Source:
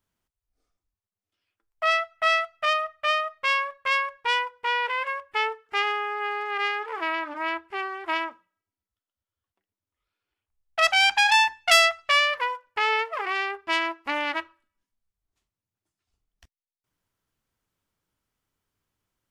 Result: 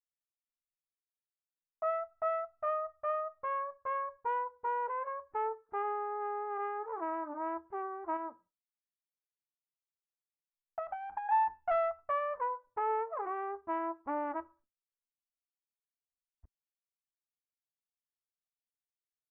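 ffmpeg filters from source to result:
-filter_complex "[0:a]asettb=1/sr,asplit=3[s0][s1][s2];[s0]atrim=end=8.164[s3];[s1]atrim=start=8.16:end=11.29,asetpts=PTS-STARTPTS,afade=t=in:d=0.004:c=qsin,afade=t=out:st=3.126:d=0.004:c=qsin,acompressor=threshold=0.0631:ratio=6:attack=3.2:release=140:knee=1:detection=peak[s4];[s2]atrim=start=11.286[s5];[s3][s4]acrossfade=d=0.004:c1=hsin:c2=qsin[s6];[s6][s5]acrossfade=d=0.004:c1=qsin:c2=hsin,lowpass=f=1100:w=0.5412,lowpass=f=1100:w=1.3066,agate=range=0.0224:threshold=0.00178:ratio=3:detection=peak,lowshelf=f=140:g=4,volume=0.596"

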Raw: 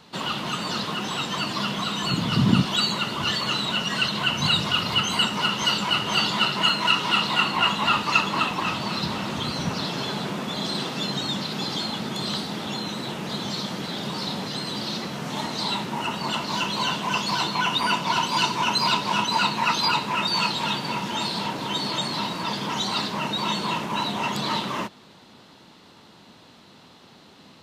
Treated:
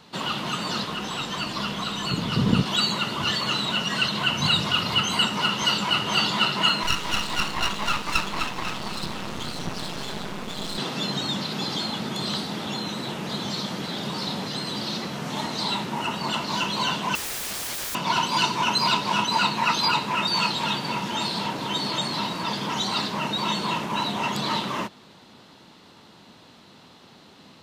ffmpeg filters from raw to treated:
-filter_complex "[0:a]asettb=1/sr,asplit=3[s0][s1][s2];[s0]atrim=end=0.844[s3];[s1]atrim=start=0.84:end=2.66,asetpts=PTS-STARTPTS,afade=t=in:d=0.004:c=qsin,afade=t=out:st=1.816:d=0.004:c=qsin,tremolo=f=270:d=0.462[s4];[s2]atrim=start=2.656[s5];[s3][s4]acrossfade=d=0.004:c1=hsin:c2=qsin[s6];[s6][s5]acrossfade=d=0.004:c1=qsin:c2=hsin,asettb=1/sr,asplit=3[s7][s8][s9];[s7]atrim=end=6.834[s10];[s8]atrim=start=6.83:end=10.78,asetpts=PTS-STARTPTS,afade=t=in:d=0.004:c=qsin,afade=t=out:st=3.946:d=0.004:c=qsin,aeval=exprs='max(val(0),0)':c=same[s11];[s9]atrim=start=10.776[s12];[s10][s11]acrossfade=d=0.004:c1=hsin:c2=qsin[s13];[s13][s12]acrossfade=d=0.004:c1=qsin:c2=hsin,asettb=1/sr,asplit=3[s14][s15][s16];[s14]atrim=end=17.154[s17];[s15]atrim=start=17.15:end=17.95,asetpts=PTS-STARTPTS,afade=t=in:d=0.004:c=qsin,afade=t=out:st=0.796:d=0.004:c=qsin,aeval=exprs='(mod(21.1*val(0)+1,2)-1)/21.1':c=same[s18];[s16]atrim=start=17.946[s19];[s17][s18]acrossfade=d=0.004:c1=hsin:c2=qsin[s20];[s20][s19]acrossfade=d=0.004:c1=qsin:c2=hsin"

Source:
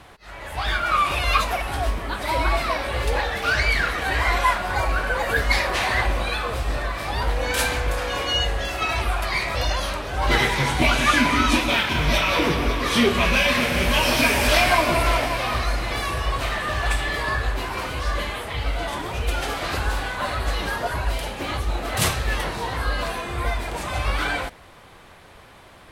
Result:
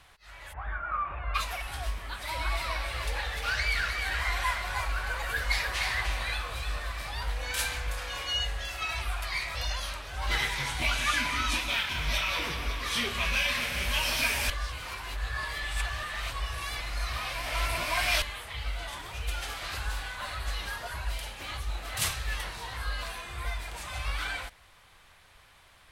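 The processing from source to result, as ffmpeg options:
-filter_complex "[0:a]asplit=3[s0][s1][s2];[s0]afade=t=out:st=0.52:d=0.02[s3];[s1]lowpass=f=1600:w=0.5412,lowpass=f=1600:w=1.3066,afade=t=in:st=0.52:d=0.02,afade=t=out:st=1.34:d=0.02[s4];[s2]afade=t=in:st=1.34:d=0.02[s5];[s3][s4][s5]amix=inputs=3:normalize=0,asettb=1/sr,asplit=3[s6][s7][s8];[s6]atrim=end=2.074[s9];[s7]atrim=start=2.07:end=7.09,asetpts=PTS-STARTPTS,afade=t=in:d=0.004:c=qsin,afade=t=out:st=5.016:d=0.004:c=qsin,aecho=1:1:304:0.501,atrim=end_sample=221382[s10];[s8]atrim=start=7.086[s11];[s9][s10]acrossfade=d=0.004:c1=hsin:c2=qsin[s12];[s12][s11]acrossfade=d=0.004:c1=qsin:c2=hsin,asplit=3[s13][s14][s15];[s13]atrim=end=14.502[s16];[s14]atrim=start=14.498:end=18.222,asetpts=PTS-STARTPTS,areverse[s17];[s15]atrim=start=18.218[s18];[s16][s17]acrossfade=d=0.004:c1=hsin:c2=hsin[s19];[s19][s18]acrossfade=d=0.004:c1=hsin:c2=hsin,equalizer=f=300:w=0.38:g=-14.5,volume=0.531"

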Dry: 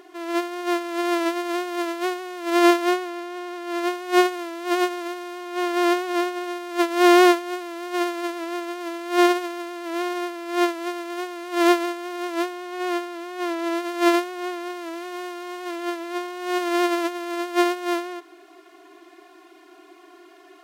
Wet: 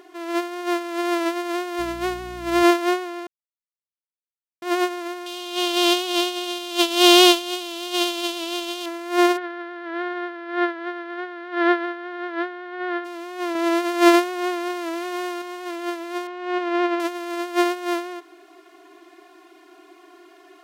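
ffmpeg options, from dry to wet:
-filter_complex "[0:a]asettb=1/sr,asplit=3[s0][s1][s2];[s0]atrim=end=1.794[s3];[s1]atrim=start=1.79:end=2.63,asetpts=PTS-STARTPTS,afade=t=in:d=0.004:c=qsin,afade=t=out:st=0.836:d=0.004:c=qsin,aeval=exprs='val(0)+0.0112*(sin(2*PI*60*n/s)+sin(2*PI*2*60*n/s)/2+sin(2*PI*3*60*n/s)/3+sin(2*PI*4*60*n/s)/4+sin(2*PI*5*60*n/s)/5)':c=same[s4];[s2]atrim=start=2.626[s5];[s3][s4]acrossfade=d=0.004:c1=hsin:c2=qsin[s6];[s6][s5]acrossfade=d=0.004:c1=qsin:c2=hsin,asettb=1/sr,asplit=3[s7][s8][s9];[s7]atrim=end=5.264[s10];[s8]atrim=start=5.26:end=8.86,asetpts=PTS-STARTPTS,afade=t=in:d=0.004:c=qsin,afade=t=out:st=3.596:d=0.004:c=qsin,highshelf=f=2400:t=q:w=3:g=8.5[s11];[s9]atrim=start=8.856[s12];[s10][s11]acrossfade=d=0.004:c1=hsin:c2=qsin[s13];[s13][s12]acrossfade=d=0.004:c1=qsin:c2=hsin,asplit=3[s14][s15][s16];[s14]afade=t=out:st=9.36:d=0.02[s17];[s15]highpass=290,equalizer=f=590:t=q:w=4:g=-5,equalizer=f=1100:t=q:w=4:g=-3,equalizer=f=1600:t=q:w=4:g=9,equalizer=f=2600:t=q:w=4:g=-9,lowpass=f=3300:w=0.5412,lowpass=f=3300:w=1.3066,afade=t=in:st=9.36:d=0.02,afade=t=out:st=13.04:d=0.02[s18];[s16]afade=t=in:st=13.04:d=0.02[s19];[s17][s18][s19]amix=inputs=3:normalize=0,asettb=1/sr,asplit=3[s20][s21][s22];[s20]atrim=end=13.554[s23];[s21]atrim=start=13.55:end=15.42,asetpts=PTS-STARTPTS,afade=t=in:d=0.004:c=qsin,afade=t=out:st=1.866:d=0.004:c=qsin,acontrast=21[s24];[s22]atrim=start=15.416[s25];[s23][s24]acrossfade=d=0.004:c1=hsin:c2=qsin[s26];[s26][s25]acrossfade=d=0.004:c1=qsin:c2=hsin,asettb=1/sr,asplit=3[s27][s28][s29];[s27]atrim=end=16.274[s30];[s28]atrim=start=16.27:end=17,asetpts=PTS-STARTPTS,afade=t=in:d=0.004:c=qsin,afade=t=out:st=0.726:d=0.004:c=qsin,lowpass=2900[s31];[s29]atrim=start=16.996[s32];[s30][s31]acrossfade=d=0.004:c1=hsin:c2=qsin[s33];[s33][s32]acrossfade=d=0.004:c1=qsin:c2=hsin,asplit=3[s34][s35][s36];[s34]atrim=end=3.27,asetpts=PTS-STARTPTS,afade=t=out:st=3.266:d=0.004:c=hsin[s37];[s35]atrim=start=3.27:end=4.62,asetpts=PTS-STARTPTS,volume=0[s38];[s36]atrim=start=4.62,asetpts=PTS-STARTPTS,afade=t=in:d=0.004:c=hsin[s39];[s37][s38][s39]concat=n=3:v=0:a=1"

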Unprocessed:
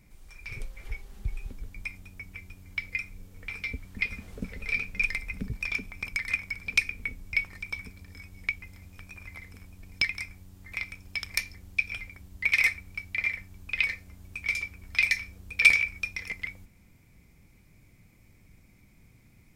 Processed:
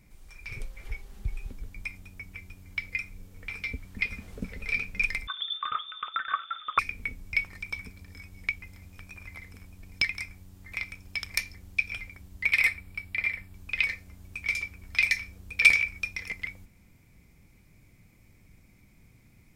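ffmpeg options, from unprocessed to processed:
-filter_complex "[0:a]asettb=1/sr,asplit=3[s0][s1][s2];[s0]atrim=end=5.274[s3];[s1]atrim=start=5.27:end=6.79,asetpts=PTS-STARTPTS,afade=t=in:d=0.004:c=qsin,afade=t=out:st=1.516:d=0.004:c=qsin,lowpass=f=3100:t=q:w=0.5098,lowpass=f=3100:t=q:w=0.6013,lowpass=f=3100:t=q:w=0.9,lowpass=f=3100:t=q:w=2.563,afreqshift=-3600[s4];[s2]atrim=start=6.786[s5];[s3][s4]acrossfade=d=0.004:c1=hsin:c2=qsin[s6];[s6][s5]acrossfade=d=0.004:c1=qsin:c2=hsin,asettb=1/sr,asplit=3[s7][s8][s9];[s7]atrim=end=12.494[s10];[s8]atrim=start=12.49:end=13.54,asetpts=PTS-STARTPTS,afade=t=in:d=0.004:c=qsin,afade=t=out:st=1.046:d=0.004:c=qsin,equalizer=f=6200:t=o:w=0.23:g=-13[s11];[s9]atrim=start=13.536[s12];[s10][s11]acrossfade=d=0.004:c1=hsin:c2=qsin[s13];[s13][s12]acrossfade=d=0.004:c1=qsin:c2=hsin"

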